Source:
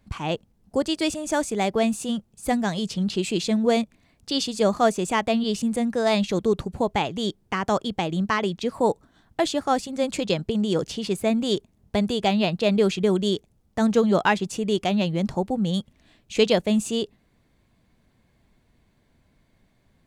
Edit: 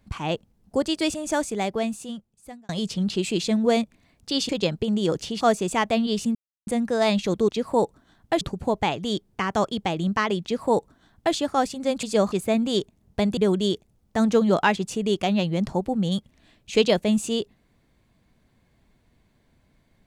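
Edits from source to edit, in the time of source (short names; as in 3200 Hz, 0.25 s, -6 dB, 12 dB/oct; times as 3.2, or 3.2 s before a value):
1.27–2.69 fade out linear
4.49–4.78 swap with 10.16–11.08
5.72 insert silence 0.32 s
8.56–9.48 copy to 6.54
12.13–12.99 cut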